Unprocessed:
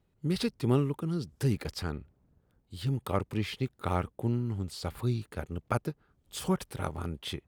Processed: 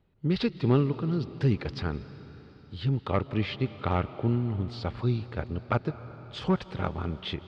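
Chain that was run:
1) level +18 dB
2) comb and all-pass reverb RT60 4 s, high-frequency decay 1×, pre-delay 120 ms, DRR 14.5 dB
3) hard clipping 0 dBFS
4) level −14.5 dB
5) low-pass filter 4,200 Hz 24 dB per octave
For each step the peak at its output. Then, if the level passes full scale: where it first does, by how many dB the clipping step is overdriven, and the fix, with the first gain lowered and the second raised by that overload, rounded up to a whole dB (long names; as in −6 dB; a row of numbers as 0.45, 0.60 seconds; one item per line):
+4.5, +4.5, 0.0, −14.5, −14.0 dBFS
step 1, 4.5 dB
step 1 +13 dB, step 4 −9.5 dB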